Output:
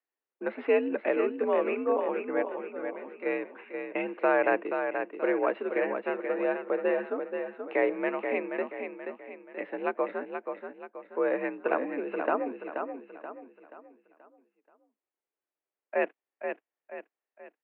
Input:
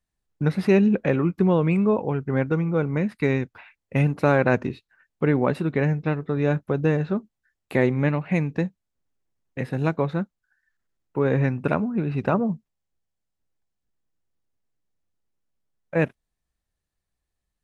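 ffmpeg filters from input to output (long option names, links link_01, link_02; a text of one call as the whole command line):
ffmpeg -i in.wav -filter_complex "[0:a]asplit=3[link_01][link_02][link_03];[link_01]afade=type=out:start_time=2.41:duration=0.02[link_04];[link_02]acompressor=threshold=-34dB:ratio=4,afade=type=in:start_time=2.41:duration=0.02,afade=type=out:start_time=3.25:duration=0.02[link_05];[link_03]afade=type=in:start_time=3.25:duration=0.02[link_06];[link_04][link_05][link_06]amix=inputs=3:normalize=0,aecho=1:1:480|960|1440|1920|2400:0.473|0.194|0.0795|0.0326|0.0134,highpass=frequency=280:width_type=q:width=0.5412,highpass=frequency=280:width_type=q:width=1.307,lowpass=frequency=2800:width_type=q:width=0.5176,lowpass=frequency=2800:width_type=q:width=0.7071,lowpass=frequency=2800:width_type=q:width=1.932,afreqshift=58,volume=-4dB" out.wav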